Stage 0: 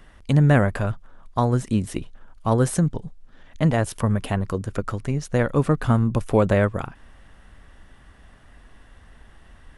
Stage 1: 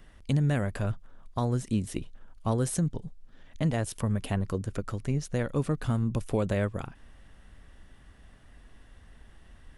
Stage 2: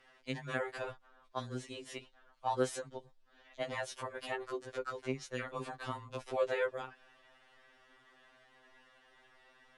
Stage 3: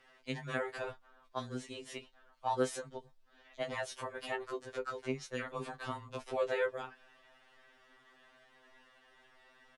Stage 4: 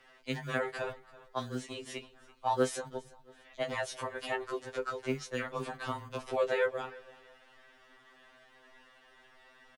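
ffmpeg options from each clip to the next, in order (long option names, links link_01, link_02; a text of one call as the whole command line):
ffmpeg -i in.wav -filter_complex "[0:a]equalizer=frequency=1100:width_type=o:width=1.9:gain=-4.5,acrossover=split=2700[link_01][link_02];[link_01]alimiter=limit=-13.5dB:level=0:latency=1:release=371[link_03];[link_03][link_02]amix=inputs=2:normalize=0,volume=-3.5dB" out.wav
ffmpeg -i in.wav -filter_complex "[0:a]acrossover=split=370 5900:gain=0.0631 1 0.158[link_01][link_02][link_03];[link_01][link_02][link_03]amix=inputs=3:normalize=0,afftfilt=real='re*2.45*eq(mod(b,6),0)':imag='im*2.45*eq(mod(b,6),0)':win_size=2048:overlap=0.75,volume=2dB" out.wav
ffmpeg -i in.wav -filter_complex "[0:a]asplit=2[link_01][link_02];[link_02]adelay=20,volume=-12dB[link_03];[link_01][link_03]amix=inputs=2:normalize=0" out.wav
ffmpeg -i in.wav -filter_complex "[0:a]acrossover=split=170[link_01][link_02];[link_01]acrusher=samples=28:mix=1:aa=0.000001[link_03];[link_03][link_02]amix=inputs=2:normalize=0,aecho=1:1:334|668:0.0891|0.0241,volume=3.5dB" out.wav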